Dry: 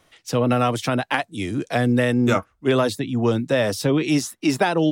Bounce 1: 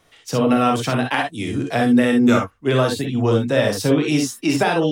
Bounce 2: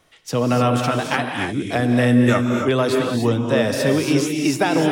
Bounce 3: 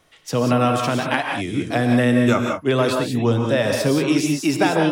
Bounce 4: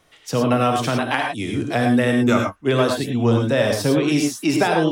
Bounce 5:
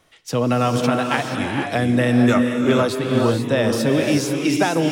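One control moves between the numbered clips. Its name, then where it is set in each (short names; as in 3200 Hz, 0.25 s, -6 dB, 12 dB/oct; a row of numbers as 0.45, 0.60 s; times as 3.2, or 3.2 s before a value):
non-linear reverb, gate: 80, 320, 210, 130, 510 ms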